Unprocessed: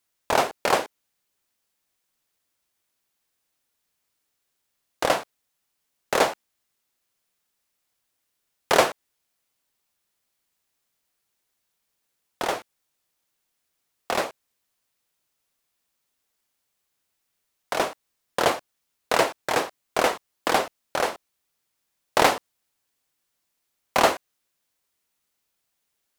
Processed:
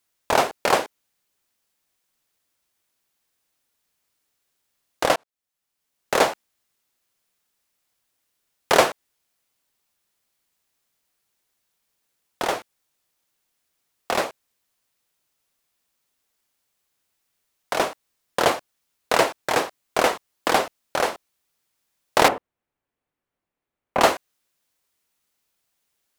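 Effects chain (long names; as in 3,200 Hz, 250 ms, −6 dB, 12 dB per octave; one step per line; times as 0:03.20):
0:05.16–0:06.19: fade in
0:22.28–0:24.01: drawn EQ curve 480 Hz 0 dB, 2,400 Hz −8 dB, 4,900 Hz −20 dB
level +2 dB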